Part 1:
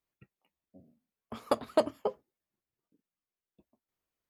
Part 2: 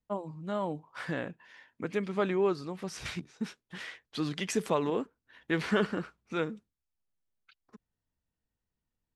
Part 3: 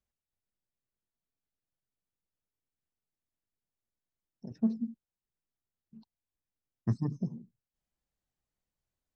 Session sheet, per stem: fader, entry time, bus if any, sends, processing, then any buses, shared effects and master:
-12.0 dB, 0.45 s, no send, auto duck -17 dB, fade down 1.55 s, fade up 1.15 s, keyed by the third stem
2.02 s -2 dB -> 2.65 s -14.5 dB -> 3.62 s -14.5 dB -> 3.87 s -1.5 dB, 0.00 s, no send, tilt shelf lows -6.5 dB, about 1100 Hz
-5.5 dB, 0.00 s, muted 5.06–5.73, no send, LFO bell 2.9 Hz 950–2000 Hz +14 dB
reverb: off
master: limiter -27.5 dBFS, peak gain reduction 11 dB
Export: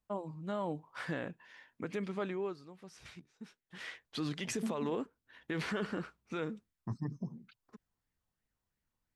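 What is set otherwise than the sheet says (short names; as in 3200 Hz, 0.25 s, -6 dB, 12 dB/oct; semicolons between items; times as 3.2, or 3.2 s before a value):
stem 1: muted; stem 2: missing tilt shelf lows -6.5 dB, about 1100 Hz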